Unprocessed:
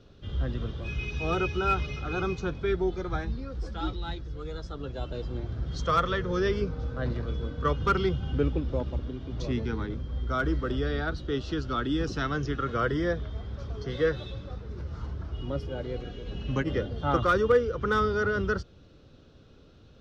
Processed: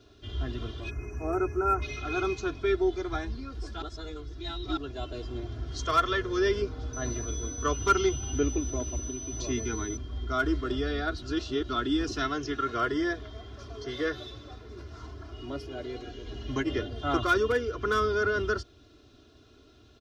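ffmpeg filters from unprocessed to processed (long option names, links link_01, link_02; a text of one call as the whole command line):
ffmpeg -i in.wav -filter_complex "[0:a]asplit=3[link_01][link_02][link_03];[link_01]afade=type=out:start_time=0.89:duration=0.02[link_04];[link_02]asuperstop=centerf=3600:order=4:qfactor=0.55,afade=type=in:start_time=0.89:duration=0.02,afade=type=out:start_time=1.81:duration=0.02[link_05];[link_03]afade=type=in:start_time=1.81:duration=0.02[link_06];[link_04][link_05][link_06]amix=inputs=3:normalize=0,asettb=1/sr,asplit=3[link_07][link_08][link_09];[link_07]atrim=end=6.934[link_10];[link_08]atrim=start=6.93:end=9.97,asetpts=PTS-STARTPTS,afade=type=in:duration=0.004:curve=qsin,afade=type=out:start_time=3.036:duration=0.004:curve=qsin,aeval=exprs='val(0)+0.00708*sin(2*PI*6000*n/s)':channel_layout=same[link_11];[link_09]atrim=start=9.966[link_12];[link_10][link_11]acrossfade=duration=0.004:curve1=hsin:curve2=qsin[link_13];[link_13][link_12]acrossfade=duration=0.004:curve1=qsin:curve2=hsin,asettb=1/sr,asplit=3[link_14][link_15][link_16];[link_14]atrim=end=12.284[link_17];[link_15]atrim=start=12.28:end=16.08,asetpts=PTS-STARTPTS,afade=type=in:duration=0.004:curve=qsin,afade=type=out:start_time=3.796:duration=0.004:curve=qsin,lowshelf=frequency=110:gain=-7.5[link_18];[link_16]atrim=start=16.076[link_19];[link_17][link_18]acrossfade=duration=0.004:curve1=hsin:curve2=qsin[link_20];[link_20][link_19]acrossfade=duration=0.004:curve1=qsin:curve2=hsin,asplit=5[link_21][link_22][link_23][link_24][link_25];[link_21]atrim=end=3.822[link_26];[link_22]atrim=start=3.818:end=4.772,asetpts=PTS-STARTPTS,areverse[link_27];[link_23]atrim=start=4.768:end=11.222[link_28];[link_24]atrim=start=11.218:end=11.692,asetpts=PTS-STARTPTS,areverse[link_29];[link_25]atrim=start=11.688[link_30];[link_26][link_27]acrossfade=duration=0.004:curve1=hsin:curve2=hsin[link_31];[link_31][link_28]acrossfade=duration=0.004:curve1=hsin:curve2=hsin[link_32];[link_32][link_29]acrossfade=duration=0.004:curve1=hsin:curve2=hsin[link_33];[link_33][link_30]acrossfade=duration=0.004:curve1=hsin:curve2=hsin,highpass=frequency=80:poles=1,highshelf=frequency=4300:gain=8.5,aecho=1:1:2.9:0.92,volume=-3dB" out.wav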